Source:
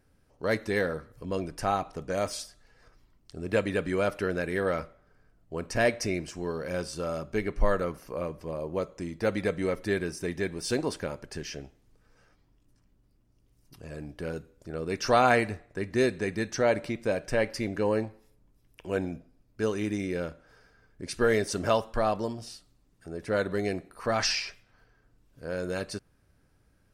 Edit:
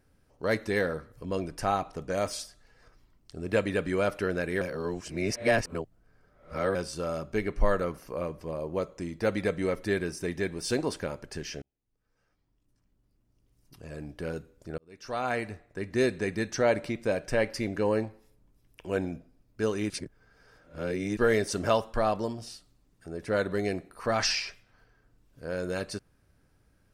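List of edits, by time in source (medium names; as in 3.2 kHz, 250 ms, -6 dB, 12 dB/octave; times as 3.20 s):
4.61–6.75 s: reverse
11.62–14.07 s: fade in
14.78–16.13 s: fade in
19.90–21.17 s: reverse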